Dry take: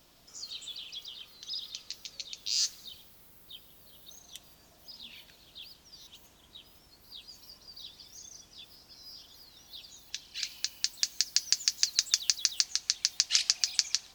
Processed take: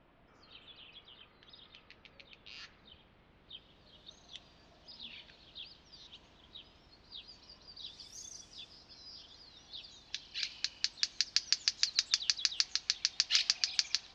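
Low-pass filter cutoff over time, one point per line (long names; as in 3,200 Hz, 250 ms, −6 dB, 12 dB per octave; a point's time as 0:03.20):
low-pass filter 24 dB per octave
0:02.80 2,400 Hz
0:04.00 4,500 Hz
0:07.79 4,500 Hz
0:08.19 12,000 Hz
0:08.85 5,000 Hz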